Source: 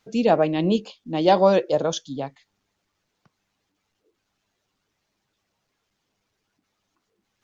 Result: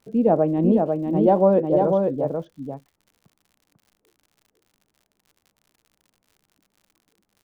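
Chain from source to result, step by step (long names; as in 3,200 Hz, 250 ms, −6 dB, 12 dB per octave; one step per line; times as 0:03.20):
Bessel low-pass filter 570 Hz, order 2
single-tap delay 496 ms −4 dB
surface crackle 99 per second −48 dBFS
level +3 dB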